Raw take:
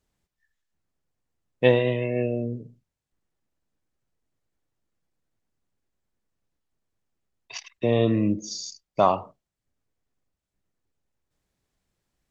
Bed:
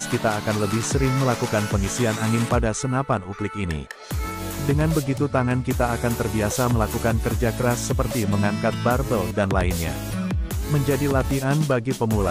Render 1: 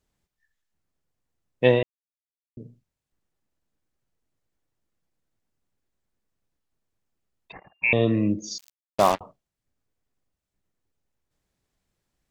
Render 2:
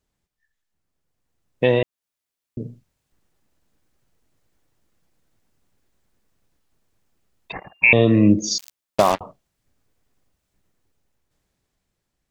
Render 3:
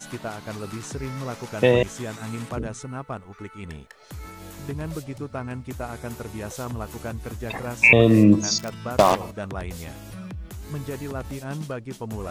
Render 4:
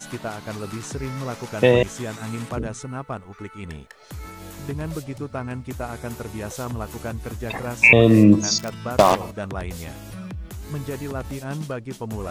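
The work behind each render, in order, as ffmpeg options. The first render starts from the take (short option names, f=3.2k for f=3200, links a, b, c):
-filter_complex "[0:a]asettb=1/sr,asplit=3[a][b][c];[a]atrim=end=7.524[d];[b]atrim=start=7.52:end=7.93,asetpts=PTS-STARTPTS,afade=t=in:d=0.004:c=qsin,afade=t=out:st=0.406:d=0.004:c=qsin,lowpass=f=2.4k:t=q:w=0.5098,lowpass=f=2.4k:t=q:w=0.6013,lowpass=f=2.4k:t=q:w=0.9,lowpass=f=2.4k:t=q:w=2.563,afreqshift=-2800[e];[c]atrim=start=7.926[f];[d][e]acrossfade=d=0.004:c1=hsin:c2=qsin[g];[g][f]acrossfade=d=0.004:c1=qsin:c2=hsin,asettb=1/sr,asplit=3[h][i][j];[h]atrim=end=8.584[k];[i]atrim=start=8.58:end=9.21,asetpts=PTS-STARTPTS,afade=t=in:d=0.004:c=qsin,afade=t=out:st=0.626:d=0.004:c=qsin,acrusher=bits=3:mix=0:aa=0.5[l];[j]atrim=start=9.206[m];[k][l]acrossfade=d=0.004:c1=hsin:c2=qsin[n];[n][m]acrossfade=d=0.004:c1=qsin:c2=hsin,asplit=3[o][p][q];[o]atrim=end=1.83,asetpts=PTS-STARTPTS,afade=t=out:st=1.826:d=0.004:c=hsin[r];[p]atrim=start=1.83:end=2.57,asetpts=PTS-STARTPTS,volume=0[s];[q]atrim=start=2.57,asetpts=PTS-STARTPTS,afade=t=in:d=0.004:c=hsin[t];[r][s][t]concat=n=3:v=0:a=1"
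-af "alimiter=limit=-15dB:level=0:latency=1:release=386,dynaudnorm=f=230:g=13:m=12dB"
-filter_complex "[1:a]volume=-11dB[a];[0:a][a]amix=inputs=2:normalize=0"
-af "volume=2dB,alimiter=limit=-2dB:level=0:latency=1"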